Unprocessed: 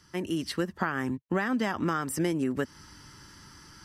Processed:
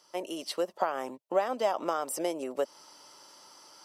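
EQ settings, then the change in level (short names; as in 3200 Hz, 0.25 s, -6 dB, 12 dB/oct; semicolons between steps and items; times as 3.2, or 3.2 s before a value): resonant high-pass 600 Hz, resonance Q 3.5; bell 1700 Hz -13.5 dB 0.63 oct; 0.0 dB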